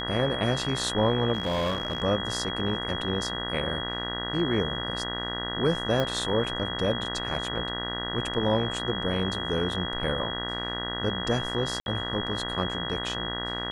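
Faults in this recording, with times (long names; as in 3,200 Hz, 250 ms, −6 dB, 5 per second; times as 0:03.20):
mains buzz 60 Hz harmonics 33 −35 dBFS
whistle 3,300 Hz −33 dBFS
0:01.33–0:02.03: clipping −23 dBFS
0:06.00: click −14 dBFS
0:11.80–0:11.86: drop-out 61 ms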